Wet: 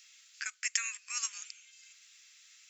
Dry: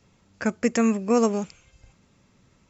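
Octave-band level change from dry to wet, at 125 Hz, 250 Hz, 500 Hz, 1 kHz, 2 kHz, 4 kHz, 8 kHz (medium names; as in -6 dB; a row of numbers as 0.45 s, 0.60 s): under -40 dB, under -40 dB, under -40 dB, -20.0 dB, -3.5 dB, +2.5 dB, no reading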